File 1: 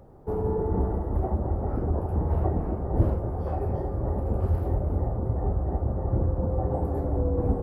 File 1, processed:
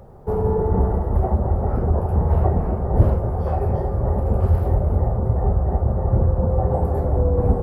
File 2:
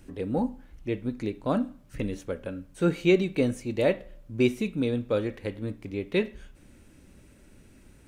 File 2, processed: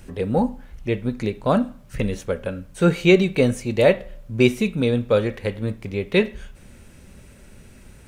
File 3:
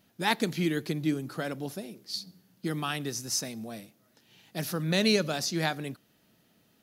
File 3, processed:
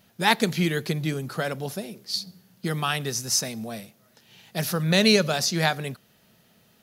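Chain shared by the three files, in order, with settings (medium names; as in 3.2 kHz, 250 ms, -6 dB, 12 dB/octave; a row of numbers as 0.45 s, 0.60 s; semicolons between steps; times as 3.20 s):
peaking EQ 300 Hz -12 dB 0.31 oct; peak normalisation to -3 dBFS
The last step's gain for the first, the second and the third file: +7.5 dB, +9.0 dB, +7.0 dB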